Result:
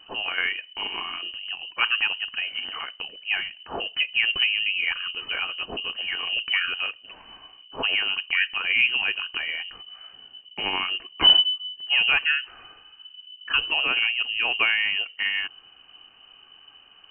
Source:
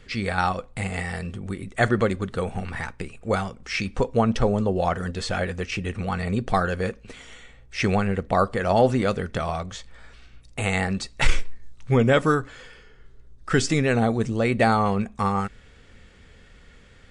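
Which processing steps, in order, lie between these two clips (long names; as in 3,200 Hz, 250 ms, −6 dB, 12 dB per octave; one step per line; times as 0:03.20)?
voice inversion scrambler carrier 3,000 Hz
level −3 dB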